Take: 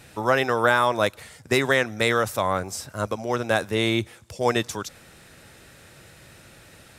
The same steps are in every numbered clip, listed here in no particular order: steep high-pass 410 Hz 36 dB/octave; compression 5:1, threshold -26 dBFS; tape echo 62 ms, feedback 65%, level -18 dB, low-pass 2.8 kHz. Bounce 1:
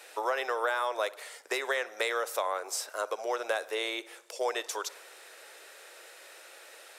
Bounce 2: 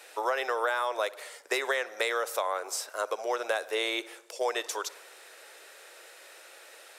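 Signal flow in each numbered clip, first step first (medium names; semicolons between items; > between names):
compression > tape echo > steep high-pass; tape echo > steep high-pass > compression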